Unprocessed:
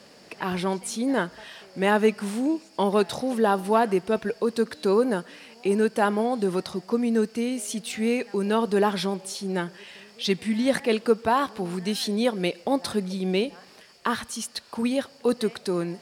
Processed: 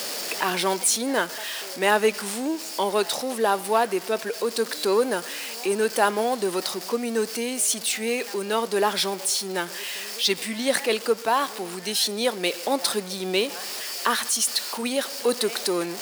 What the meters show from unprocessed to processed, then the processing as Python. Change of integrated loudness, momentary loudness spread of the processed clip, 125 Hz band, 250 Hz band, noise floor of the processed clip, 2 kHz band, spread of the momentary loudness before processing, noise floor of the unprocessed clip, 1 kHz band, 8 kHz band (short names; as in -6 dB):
+1.0 dB, 7 LU, -8.5 dB, -5.5 dB, -36 dBFS, +4.0 dB, 9 LU, -51 dBFS, +1.5 dB, +11.5 dB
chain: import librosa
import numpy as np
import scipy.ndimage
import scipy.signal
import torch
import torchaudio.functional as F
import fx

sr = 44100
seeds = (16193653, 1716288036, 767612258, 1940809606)

y = x + 0.5 * 10.0 ** (-34.5 / 20.0) * np.sign(x)
y = scipy.signal.sosfilt(scipy.signal.butter(2, 350.0, 'highpass', fs=sr, output='sos'), y)
y = fx.high_shelf(y, sr, hz=3500.0, db=9.0)
y = fx.rider(y, sr, range_db=10, speed_s=2.0)